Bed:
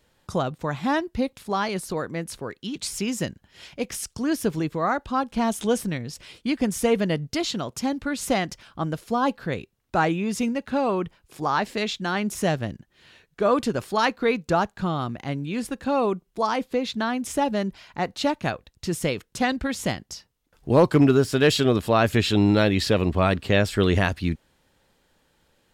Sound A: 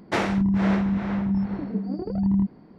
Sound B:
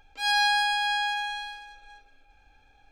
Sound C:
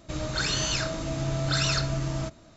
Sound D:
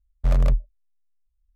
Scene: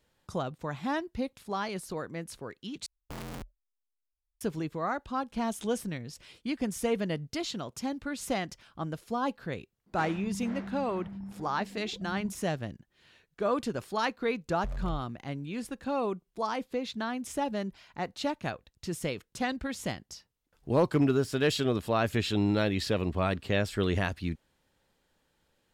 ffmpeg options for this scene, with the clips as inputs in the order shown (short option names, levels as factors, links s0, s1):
-filter_complex "[4:a]asplit=2[s0][s1];[0:a]volume=0.398[s2];[s0]aeval=exprs='(mod(7.94*val(0)+1,2)-1)/7.94':c=same[s3];[s1]alimiter=limit=0.106:level=0:latency=1:release=71[s4];[s2]asplit=2[s5][s6];[s5]atrim=end=2.864[s7];[s3]atrim=end=1.55,asetpts=PTS-STARTPTS,volume=0.126[s8];[s6]atrim=start=4.406[s9];[1:a]atrim=end=2.78,asetpts=PTS-STARTPTS,volume=0.133,afade=t=in:d=0.004:c=hsin,afade=t=out:st=2.776:d=0.004:c=hsin,adelay=434826S[s10];[s4]atrim=end=1.55,asetpts=PTS-STARTPTS,volume=0.316,afade=t=in:d=0.004:c=hsin,afade=t=out:st=1.546:d=0.004:c=hsin,adelay=14400[s11];[s7][s8]acrossfade=d=0.004:c1=hsin:c2=hsin[s12];[s12][s9]acrossfade=d=0.004:c1=hsin:c2=hsin[s13];[s13][s10][s11]amix=inputs=3:normalize=0"